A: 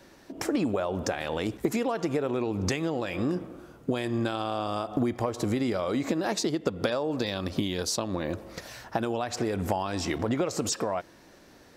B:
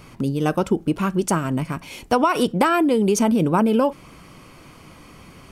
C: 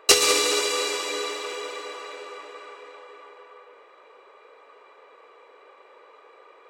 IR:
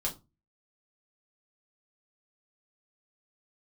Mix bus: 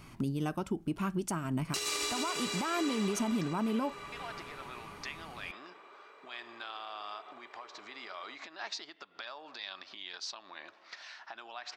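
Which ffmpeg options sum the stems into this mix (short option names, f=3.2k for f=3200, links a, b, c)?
-filter_complex "[0:a]lowpass=f=4.9k:w=0.5412,lowpass=f=4.9k:w=1.3066,alimiter=limit=-21.5dB:level=0:latency=1:release=341,highpass=1.1k,adelay=2350,volume=-2dB,asplit=3[a][b][c];[a]atrim=end=3.48,asetpts=PTS-STARTPTS,afade=t=out:st=3.476:d=0.004:c=hsin[d];[b]atrim=start=3.48:end=4.12,asetpts=PTS-STARTPTS,volume=0[e];[c]atrim=start=4.12,asetpts=PTS-STARTPTS,afade=t=in:d=0.004:c=hsin[f];[d][e][f]concat=n=3:v=0:a=1[g];[1:a]volume=-7.5dB[h];[2:a]adelay=1650,volume=-3dB[i];[g][h][i]amix=inputs=3:normalize=0,equalizer=f=500:t=o:w=0.23:g=-14.5,alimiter=limit=-23.5dB:level=0:latency=1:release=354"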